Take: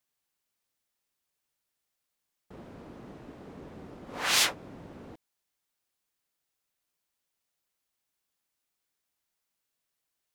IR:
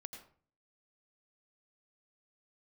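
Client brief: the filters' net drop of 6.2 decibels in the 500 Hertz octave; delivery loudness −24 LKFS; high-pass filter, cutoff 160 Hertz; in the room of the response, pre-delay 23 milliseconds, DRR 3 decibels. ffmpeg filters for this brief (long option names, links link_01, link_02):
-filter_complex "[0:a]highpass=160,equalizer=frequency=500:width_type=o:gain=-8,asplit=2[link_01][link_02];[1:a]atrim=start_sample=2205,adelay=23[link_03];[link_02][link_03]afir=irnorm=-1:irlink=0,volume=1.5dB[link_04];[link_01][link_04]amix=inputs=2:normalize=0,volume=1dB"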